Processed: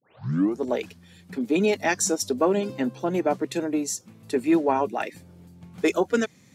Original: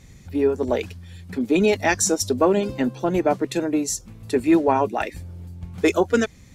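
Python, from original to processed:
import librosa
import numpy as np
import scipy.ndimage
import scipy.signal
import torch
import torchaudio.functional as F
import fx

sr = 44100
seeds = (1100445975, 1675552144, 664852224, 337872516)

y = fx.tape_start_head(x, sr, length_s=0.61)
y = scipy.signal.sosfilt(scipy.signal.butter(4, 130.0, 'highpass', fs=sr, output='sos'), y)
y = y * 10.0 ** (-3.5 / 20.0)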